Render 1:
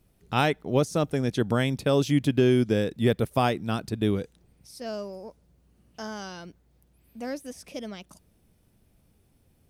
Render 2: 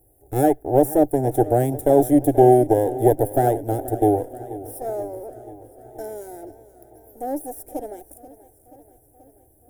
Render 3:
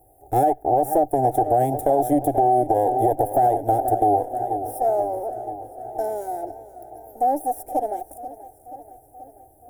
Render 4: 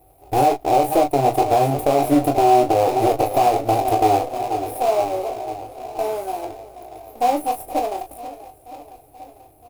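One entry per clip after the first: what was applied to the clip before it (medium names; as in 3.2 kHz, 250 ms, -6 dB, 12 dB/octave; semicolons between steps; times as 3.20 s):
comb filter that takes the minimum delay 0.54 ms; FFT filter 130 Hz 0 dB, 190 Hz -27 dB, 300 Hz +8 dB, 510 Hz +6 dB, 770 Hz +14 dB, 1.1 kHz -24 dB, 1.6 kHz -11 dB, 2.3 kHz -19 dB, 4.5 kHz -23 dB, 11 kHz +13 dB; modulated delay 482 ms, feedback 65%, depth 74 cents, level -17 dB; trim +3.5 dB
peaking EQ 760 Hz +15 dB 0.66 oct; peak limiter -5.5 dBFS, peak gain reduction 11 dB; compression 2:1, threshold -18 dBFS, peak gain reduction 5 dB
in parallel at -11 dB: sample-rate reducer 1.7 kHz, jitter 20%; on the sum: early reflections 21 ms -6.5 dB, 37 ms -9.5 dB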